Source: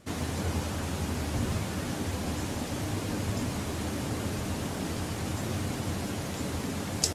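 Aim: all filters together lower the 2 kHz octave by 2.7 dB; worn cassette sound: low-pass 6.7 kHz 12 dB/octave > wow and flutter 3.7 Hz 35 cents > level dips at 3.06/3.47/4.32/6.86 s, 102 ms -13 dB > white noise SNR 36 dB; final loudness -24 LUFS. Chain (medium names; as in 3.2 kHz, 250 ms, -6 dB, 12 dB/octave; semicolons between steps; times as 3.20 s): low-pass 6.7 kHz 12 dB/octave; peaking EQ 2 kHz -3.5 dB; wow and flutter 3.7 Hz 35 cents; level dips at 3.06/3.47/4.32/6.86 s, 102 ms -13 dB; white noise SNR 36 dB; trim +9.5 dB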